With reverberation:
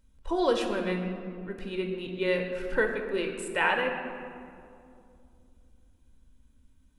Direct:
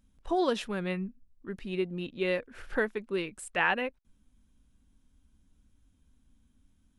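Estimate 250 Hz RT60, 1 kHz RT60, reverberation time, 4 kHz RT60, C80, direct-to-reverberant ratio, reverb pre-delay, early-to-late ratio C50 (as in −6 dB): 3.4 s, 2.3 s, 2.5 s, 1.2 s, 6.5 dB, 3.0 dB, 3 ms, 5.5 dB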